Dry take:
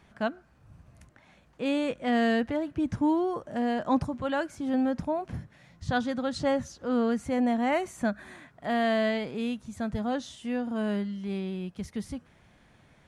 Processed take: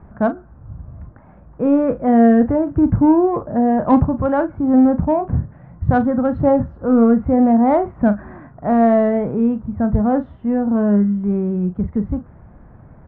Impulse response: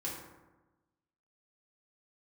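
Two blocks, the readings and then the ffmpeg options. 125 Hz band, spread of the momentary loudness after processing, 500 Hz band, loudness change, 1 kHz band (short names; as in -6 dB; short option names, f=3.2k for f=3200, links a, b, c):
+16.5 dB, 10 LU, +12.0 dB, +13.0 dB, +11.0 dB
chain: -filter_complex "[0:a]lowpass=f=1.3k:w=0.5412,lowpass=f=1.3k:w=1.3066,lowshelf=f=140:g=10.5,asplit=2[a][b];[b]asoftclip=type=tanh:threshold=-25dB,volume=-8dB[c];[a][c]amix=inputs=2:normalize=0,asplit=2[d][e];[e]adelay=39,volume=-11.5dB[f];[d][f]amix=inputs=2:normalize=0,volume=9dB"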